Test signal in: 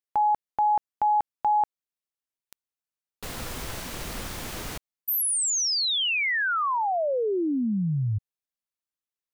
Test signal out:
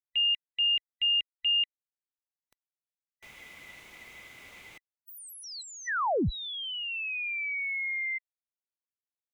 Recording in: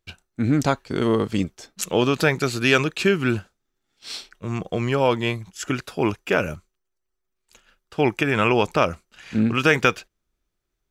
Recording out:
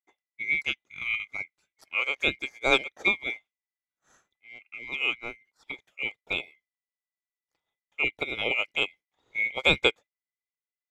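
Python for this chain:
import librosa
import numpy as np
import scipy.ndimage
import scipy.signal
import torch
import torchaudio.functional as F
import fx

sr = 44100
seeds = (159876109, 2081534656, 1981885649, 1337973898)

y = fx.band_swap(x, sr, width_hz=2000)
y = fx.high_shelf(y, sr, hz=3600.0, db=-9.5)
y = fx.upward_expand(y, sr, threshold_db=-33.0, expansion=2.5)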